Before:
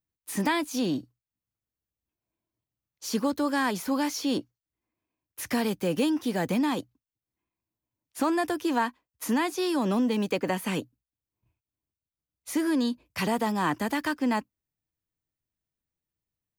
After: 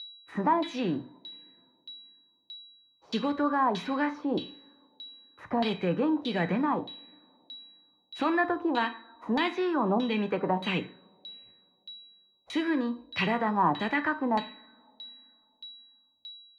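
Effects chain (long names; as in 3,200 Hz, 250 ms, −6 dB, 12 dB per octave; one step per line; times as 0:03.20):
coupled-rooms reverb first 0.44 s, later 3.3 s, from −27 dB, DRR 7.5 dB
steady tone 3,900 Hz −42 dBFS
auto-filter low-pass saw down 1.6 Hz 730–3,700 Hz
level −2.5 dB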